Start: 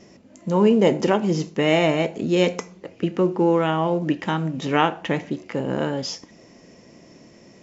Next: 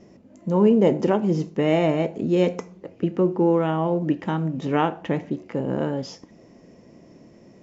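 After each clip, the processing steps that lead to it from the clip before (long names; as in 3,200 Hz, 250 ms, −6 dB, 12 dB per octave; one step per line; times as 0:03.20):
tilt shelving filter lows +5.5 dB, about 1,300 Hz
level −5 dB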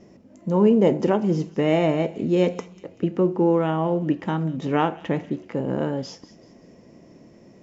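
delay with a high-pass on its return 191 ms, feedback 40%, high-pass 2,600 Hz, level −15 dB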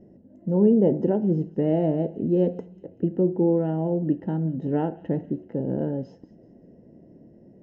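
moving average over 38 samples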